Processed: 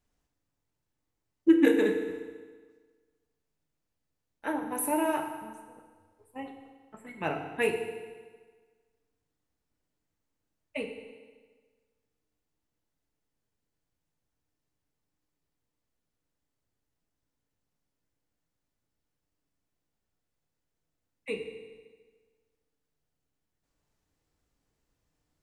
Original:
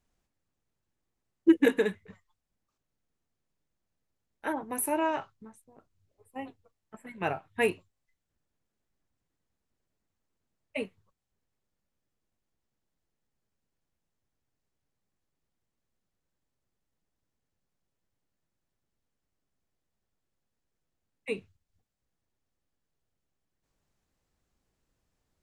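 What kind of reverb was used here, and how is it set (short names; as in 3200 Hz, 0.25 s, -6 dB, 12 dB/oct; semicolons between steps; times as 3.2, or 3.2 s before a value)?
FDN reverb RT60 1.5 s, low-frequency decay 0.95×, high-frequency decay 0.9×, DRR 3.5 dB; gain -1.5 dB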